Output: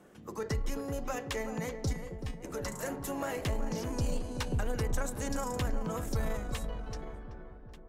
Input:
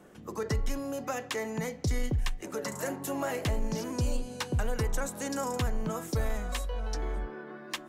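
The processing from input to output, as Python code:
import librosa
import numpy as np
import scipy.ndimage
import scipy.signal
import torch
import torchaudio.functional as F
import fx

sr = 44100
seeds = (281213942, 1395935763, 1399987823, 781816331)

p1 = fx.fade_out_tail(x, sr, length_s=1.62)
p2 = fx.comb_fb(p1, sr, f0_hz=180.0, decay_s=0.22, harmonics='all', damping=0.0, mix_pct=90, at=(1.92, 2.43), fade=0.02)
p3 = p2 + fx.echo_filtered(p2, sr, ms=380, feedback_pct=62, hz=1100.0, wet_db=-7, dry=0)
p4 = fx.cheby_harmonics(p3, sr, harmonics=(2, 4, 6), levels_db=(-17, -26, -27), full_scale_db=-17.0)
y = p4 * librosa.db_to_amplitude(-3.0)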